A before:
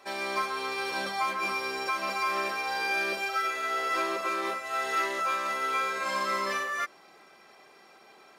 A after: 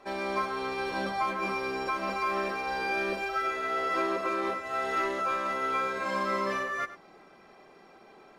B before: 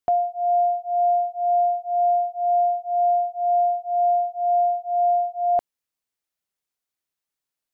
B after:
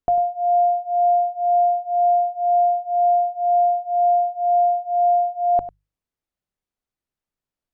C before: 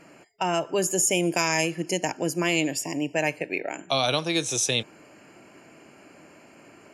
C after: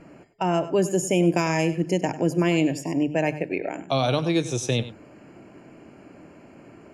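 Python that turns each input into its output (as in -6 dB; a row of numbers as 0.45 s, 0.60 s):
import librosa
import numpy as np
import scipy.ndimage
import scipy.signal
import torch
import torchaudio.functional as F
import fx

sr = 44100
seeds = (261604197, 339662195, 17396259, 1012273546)

p1 = fx.tilt_eq(x, sr, slope=-3.0)
p2 = fx.hum_notches(p1, sr, base_hz=50, count=3)
y = p2 + fx.echo_single(p2, sr, ms=98, db=-14.5, dry=0)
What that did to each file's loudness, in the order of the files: -1.0 LU, +2.5 LU, +1.0 LU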